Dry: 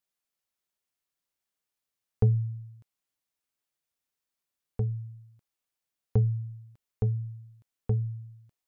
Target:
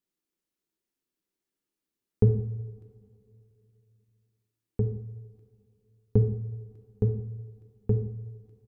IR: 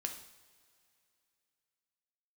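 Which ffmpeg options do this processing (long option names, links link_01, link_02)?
-filter_complex "[0:a]firequalizer=gain_entry='entry(110,0);entry(350,11);entry(590,-6)':delay=0.05:min_phase=1[link_01];[1:a]atrim=start_sample=2205[link_02];[link_01][link_02]afir=irnorm=-1:irlink=0,volume=3.5dB"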